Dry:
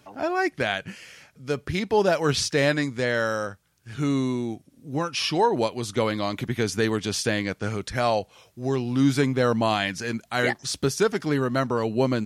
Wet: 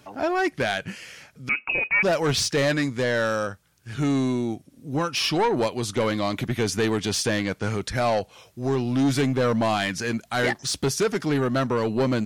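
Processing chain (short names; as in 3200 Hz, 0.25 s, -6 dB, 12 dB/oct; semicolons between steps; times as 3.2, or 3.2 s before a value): soft clip -20 dBFS, distortion -12 dB; 1.49–2.03 inverted band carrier 2700 Hz; gain +3.5 dB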